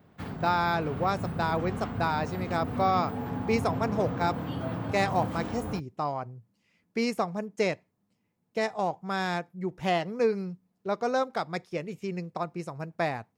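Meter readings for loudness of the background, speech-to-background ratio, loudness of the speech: -35.0 LUFS, 4.5 dB, -30.5 LUFS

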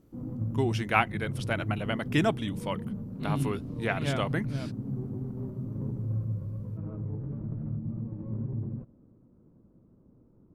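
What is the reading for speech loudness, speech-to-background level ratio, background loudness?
-31.0 LUFS, 4.5 dB, -35.5 LUFS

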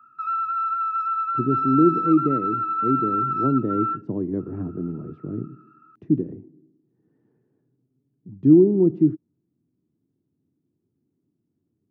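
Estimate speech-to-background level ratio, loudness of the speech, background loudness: 2.0 dB, -22.5 LUFS, -24.5 LUFS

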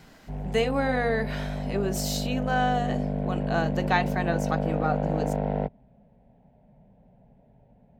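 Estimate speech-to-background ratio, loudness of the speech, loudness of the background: 1.0 dB, -29.0 LUFS, -30.0 LUFS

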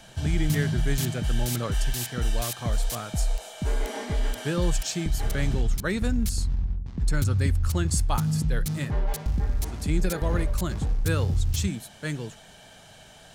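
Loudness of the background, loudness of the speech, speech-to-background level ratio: -29.0 LUFS, -32.0 LUFS, -3.0 dB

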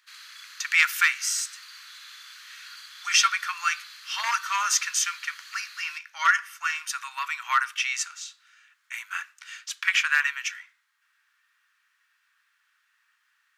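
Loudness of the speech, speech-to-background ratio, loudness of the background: -25.5 LUFS, 18.0 dB, -43.5 LUFS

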